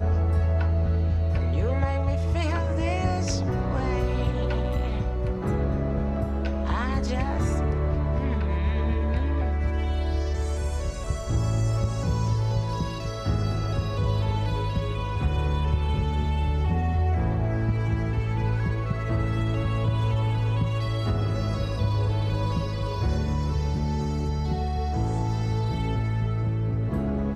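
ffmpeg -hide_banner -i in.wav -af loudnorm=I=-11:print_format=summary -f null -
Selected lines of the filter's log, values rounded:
Input Integrated:    -26.4 LUFS
Input True Peak:     -13.5 dBTP
Input LRA:             1.4 LU
Input Threshold:     -36.4 LUFS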